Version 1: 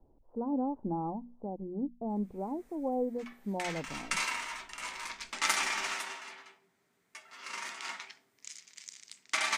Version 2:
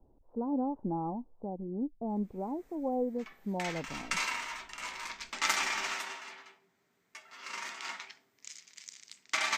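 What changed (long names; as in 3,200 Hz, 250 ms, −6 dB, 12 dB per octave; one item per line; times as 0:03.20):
speech: remove mains-hum notches 60/120/180/240 Hz
master: add parametric band 9,600 Hz −13.5 dB 0.21 octaves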